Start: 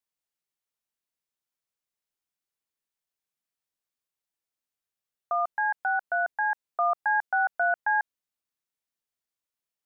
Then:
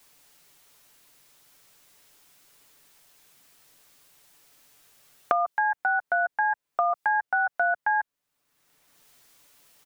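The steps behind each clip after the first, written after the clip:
transient designer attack 0 dB, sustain +4 dB
comb filter 6.9 ms, depth 42%
multiband upward and downward compressor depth 100%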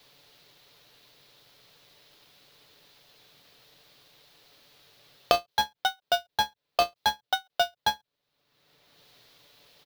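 each half-wave held at its own peak
octave-band graphic EQ 125/500/4,000/8,000 Hz +8/+8/+12/−10 dB
every ending faded ahead of time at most 410 dB per second
level −5.5 dB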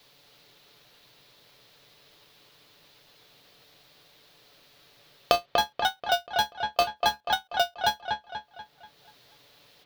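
delay with a low-pass on its return 242 ms, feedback 45%, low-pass 2,900 Hz, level −4 dB

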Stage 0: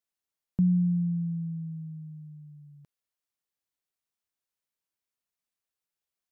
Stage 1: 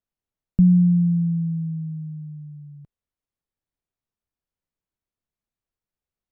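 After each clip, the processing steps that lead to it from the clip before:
spectral tilt −3.5 dB per octave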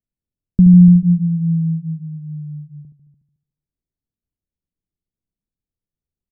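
single-tap delay 293 ms −13.5 dB
low-pass that shuts in the quiet parts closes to 320 Hz, open at −4.5 dBFS
repeating echo 73 ms, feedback 57%, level −8.5 dB
level +5 dB

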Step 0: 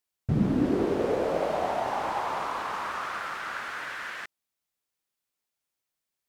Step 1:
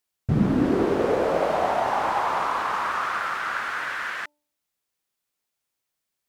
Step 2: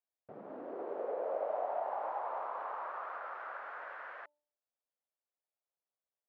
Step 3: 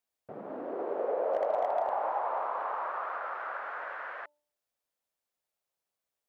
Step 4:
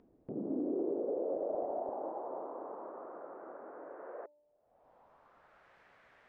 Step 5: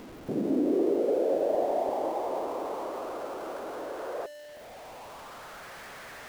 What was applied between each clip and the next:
hum removal 296 Hz, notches 3; dynamic equaliser 1,300 Hz, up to +4 dB, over −42 dBFS, Q 0.91; level +3.5 dB
downward compressor, threshold −24 dBFS, peak gain reduction 9 dB; four-pole ladder band-pass 690 Hz, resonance 45%
gain into a clipping stage and back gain 27.5 dB; level +6.5 dB
low-pass filter sweep 310 Hz → 1,800 Hz, 0:03.83–0:05.76; brickwall limiter −30.5 dBFS, peak gain reduction 5.5 dB; upward compression, threshold −47 dBFS; level +3.5 dB
converter with a step at zero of −49.5 dBFS; level +8.5 dB

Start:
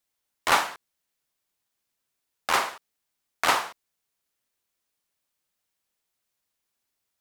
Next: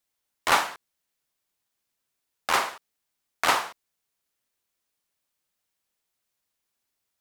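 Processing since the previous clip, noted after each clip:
no processing that can be heard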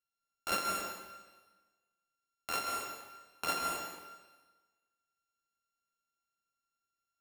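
samples sorted by size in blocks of 32 samples
flanger 0.48 Hz, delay 5.3 ms, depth 8.6 ms, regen −53%
dense smooth reverb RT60 1.3 s, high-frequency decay 0.95×, pre-delay 120 ms, DRR 1 dB
level −8.5 dB

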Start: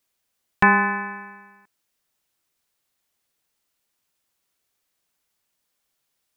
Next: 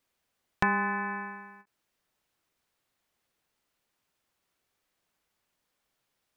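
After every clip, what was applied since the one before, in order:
high-shelf EQ 4,000 Hz −10 dB
downward compressor 2.5 to 1, threshold −31 dBFS, peak gain reduction 12.5 dB
every ending faded ahead of time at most 430 dB per second
level +2 dB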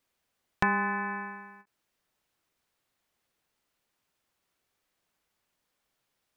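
no processing that can be heard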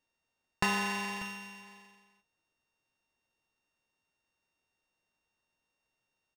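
samples sorted by size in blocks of 16 samples
single-tap delay 591 ms −16 dB
linearly interpolated sample-rate reduction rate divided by 3×
level −3 dB

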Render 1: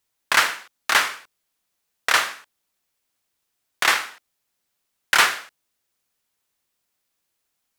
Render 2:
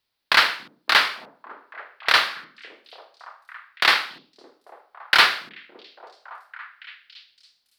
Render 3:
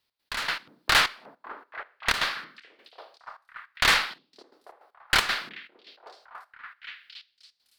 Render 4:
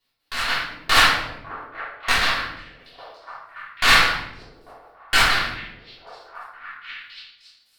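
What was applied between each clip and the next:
high shelf with overshoot 5,500 Hz −7.5 dB, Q 3; echo through a band-pass that steps 281 ms, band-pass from 210 Hz, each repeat 0.7 octaves, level −9 dB
tube saturation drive 17 dB, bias 0.45; gate pattern "x.x..x.xxxx..x.x" 156 BPM −12 dB; level +2.5 dB
rectangular room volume 220 cubic metres, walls mixed, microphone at 3.3 metres; level −3.5 dB

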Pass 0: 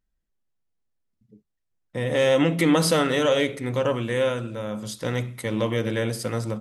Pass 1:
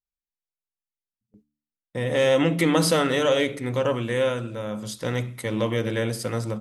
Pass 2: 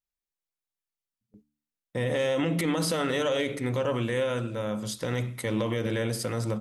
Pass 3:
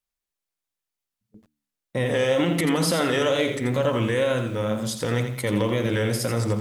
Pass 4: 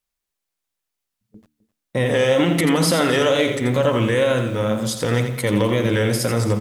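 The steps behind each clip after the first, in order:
noise gate with hold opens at −40 dBFS; hum removal 73.64 Hz, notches 4
brickwall limiter −18.5 dBFS, peak gain reduction 11 dB
tape wow and flutter 81 cents; feedback echo at a low word length 85 ms, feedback 35%, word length 9 bits, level −8 dB; level +4.5 dB
single-tap delay 259 ms −18.5 dB; level +4.5 dB

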